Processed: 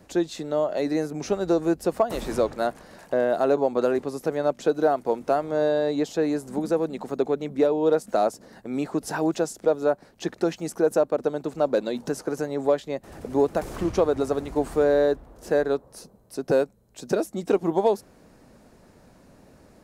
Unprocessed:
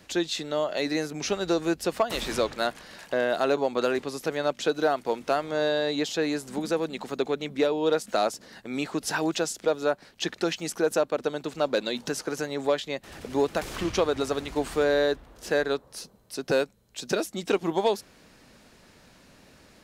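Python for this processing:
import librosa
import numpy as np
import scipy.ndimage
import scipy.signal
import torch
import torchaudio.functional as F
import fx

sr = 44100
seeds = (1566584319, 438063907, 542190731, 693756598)

y = fx.curve_eq(x, sr, hz=(700.0, 3200.0, 9100.0), db=(0, -14, -6))
y = y * 10.0 ** (3.5 / 20.0)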